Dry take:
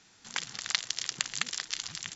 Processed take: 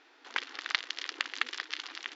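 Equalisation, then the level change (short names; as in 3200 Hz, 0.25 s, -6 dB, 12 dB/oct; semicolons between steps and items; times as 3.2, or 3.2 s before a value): dynamic EQ 660 Hz, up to -6 dB, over -56 dBFS, Q 1.7; brick-wall FIR high-pass 260 Hz; air absorption 310 m; +6.0 dB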